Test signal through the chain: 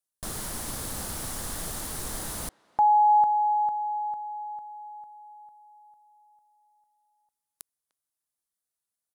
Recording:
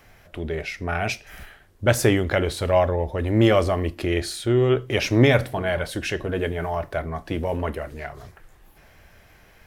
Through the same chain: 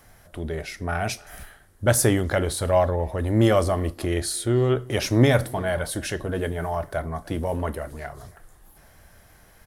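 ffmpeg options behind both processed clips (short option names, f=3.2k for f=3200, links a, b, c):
-filter_complex "[0:a]equalizer=f=400:t=o:w=0.67:g=-3,equalizer=f=2.5k:t=o:w=0.67:g=-8,equalizer=f=10k:t=o:w=0.67:g=10,asplit=2[a][b];[b]adelay=300,highpass=300,lowpass=3.4k,asoftclip=type=hard:threshold=-15dB,volume=-23dB[c];[a][c]amix=inputs=2:normalize=0"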